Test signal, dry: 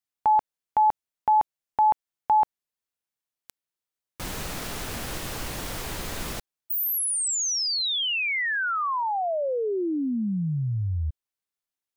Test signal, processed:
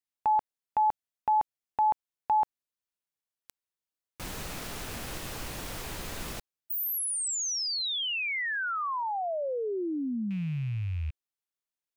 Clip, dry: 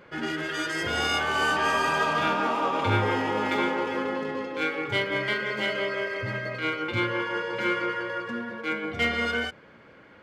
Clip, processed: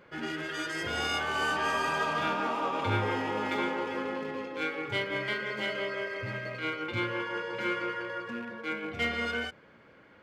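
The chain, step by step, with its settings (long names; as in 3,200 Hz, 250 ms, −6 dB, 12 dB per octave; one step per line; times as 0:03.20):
loose part that buzzes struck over −39 dBFS, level −35 dBFS
level −5 dB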